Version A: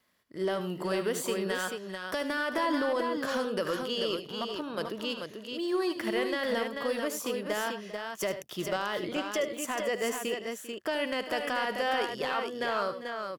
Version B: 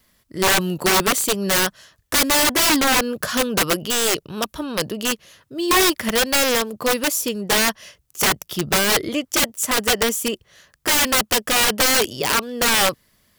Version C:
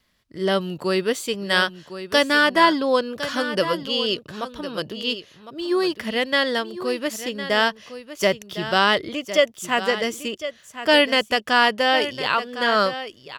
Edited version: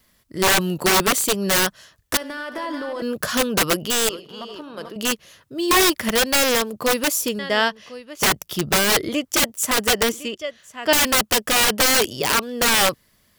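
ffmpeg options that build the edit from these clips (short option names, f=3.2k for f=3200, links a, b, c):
-filter_complex "[0:a]asplit=2[a][b];[2:a]asplit=2[c][d];[1:a]asplit=5[e][f][g][h][i];[e]atrim=end=2.172[j];[a]atrim=start=2.168:end=3.022[k];[f]atrim=start=3.018:end=4.092[l];[b]atrim=start=4.088:end=4.962[m];[g]atrim=start=4.958:end=7.392[n];[c]atrim=start=7.388:end=8.222[o];[h]atrim=start=8.218:end=10.122[p];[d]atrim=start=10.118:end=10.932[q];[i]atrim=start=10.928[r];[j][k]acrossfade=d=0.004:c1=hsin:c2=hsin[s];[s][l]acrossfade=d=0.004:c1=hsin:c2=hsin[t];[t][m]acrossfade=d=0.004:c1=hsin:c2=hsin[u];[u][n]acrossfade=d=0.004:c1=hsin:c2=hsin[v];[v][o]acrossfade=d=0.004:c1=hsin:c2=hsin[w];[w][p]acrossfade=d=0.004:c1=hsin:c2=hsin[x];[x][q]acrossfade=d=0.004:c1=hsin:c2=hsin[y];[y][r]acrossfade=d=0.004:c1=hsin:c2=hsin"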